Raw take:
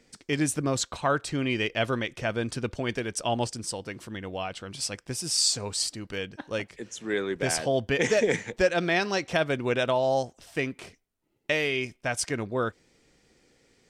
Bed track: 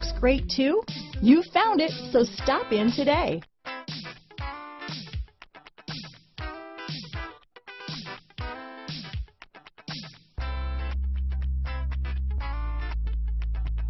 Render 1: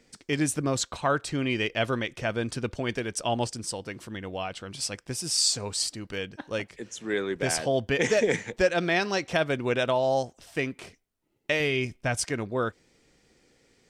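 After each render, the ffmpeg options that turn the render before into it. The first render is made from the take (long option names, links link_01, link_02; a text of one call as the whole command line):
ffmpeg -i in.wav -filter_complex "[0:a]asettb=1/sr,asplit=3[link_01][link_02][link_03];[link_01]atrim=end=11.604[link_04];[link_02]atrim=start=11.6:end=12.23,asetpts=PTS-STARTPTS,afade=type=in:duration=0.004:curve=qsin,afade=type=out:start_time=0.626:duration=0.004:curve=qsin,lowshelf=frequency=190:gain=10[link_05];[link_03]atrim=start=12.226[link_06];[link_04][link_05]acrossfade=duration=0.004:curve1=hsin:curve2=qsin[link_07];[link_07][link_06]acrossfade=duration=0.004:curve1=qsin:curve2=hsin" out.wav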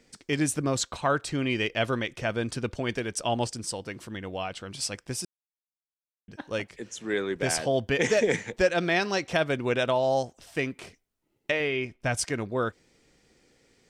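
ffmpeg -i in.wav -filter_complex "[0:a]asettb=1/sr,asplit=3[link_01][link_02][link_03];[link_01]atrim=end=11.514[link_04];[link_02]atrim=start=11.51:end=12.01,asetpts=PTS-STARTPTS,afade=type=in:duration=0.004:curve=qsin,afade=type=out:start_time=0.496:duration=0.004:curve=qsin,bass=frequency=250:gain=-7,treble=frequency=4000:gain=-14[link_05];[link_03]atrim=start=12.006[link_06];[link_04][link_05]acrossfade=duration=0.004:curve1=hsin:curve2=qsin[link_07];[link_07][link_06]acrossfade=duration=0.004:curve1=qsin:curve2=hsin,asplit=3[link_08][link_09][link_10];[link_08]atrim=end=5.25,asetpts=PTS-STARTPTS,afade=type=out:start_time=5.246:duration=0.004:curve=hsin[link_11];[link_09]atrim=start=5.25:end=6.28,asetpts=PTS-STARTPTS,volume=0[link_12];[link_10]atrim=start=6.28,asetpts=PTS-STARTPTS,afade=type=in:duration=0.004:curve=hsin[link_13];[link_11][link_12][link_13]concat=n=3:v=0:a=1" out.wav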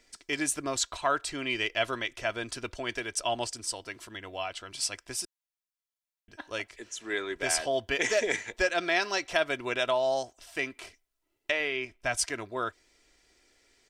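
ffmpeg -i in.wav -af "equalizer=frequency=170:width_type=o:width=2.7:gain=-13,aecho=1:1:3:0.44" out.wav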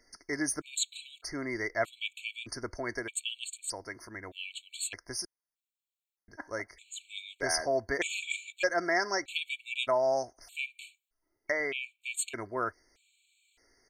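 ffmpeg -i in.wav -af "afftfilt=real='re*gt(sin(2*PI*0.81*pts/sr)*(1-2*mod(floor(b*sr/1024/2200),2)),0)':imag='im*gt(sin(2*PI*0.81*pts/sr)*(1-2*mod(floor(b*sr/1024/2200),2)),0)':win_size=1024:overlap=0.75" out.wav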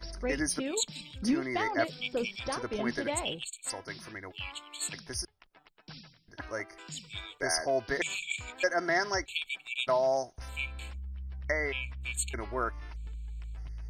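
ffmpeg -i in.wav -i bed.wav -filter_complex "[1:a]volume=-12dB[link_01];[0:a][link_01]amix=inputs=2:normalize=0" out.wav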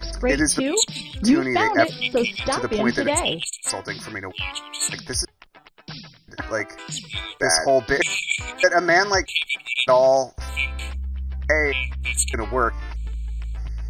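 ffmpeg -i in.wav -af "volume=11.5dB" out.wav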